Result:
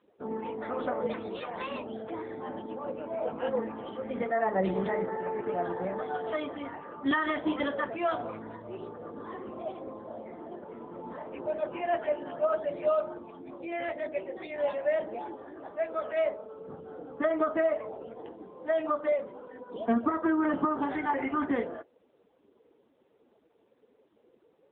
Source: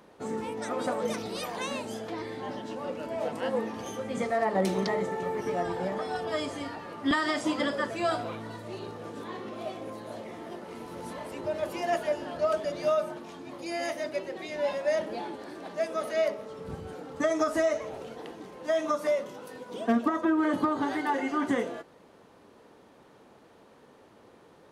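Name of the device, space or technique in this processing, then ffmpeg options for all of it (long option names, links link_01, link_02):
mobile call with aggressive noise cancelling: -filter_complex "[0:a]asettb=1/sr,asplit=3[link_01][link_02][link_03];[link_01]atrim=end=15.064[link_04];[link_02]atrim=start=15.06:end=16.92,asetpts=PTS-STARTPTS,afade=type=in:duration=0.004:curve=qsin,afade=type=out:start_time=1.856:duration=0.004:curve=qsin,highpass=frequency=230:poles=1[link_05];[link_03]atrim=start=16.916[link_06];[link_04][link_05]acrossfade=duration=0.004:curve1=hsin:curve2=qsin[link_07];[link_07][link_06]acrossfade=duration=0.004:curve1=qsin:curve2=hsin,highpass=frequency=160:poles=1,afftdn=noise_reduction=15:noise_floor=-45" -ar 8000 -c:a libopencore_amrnb -b:a 7950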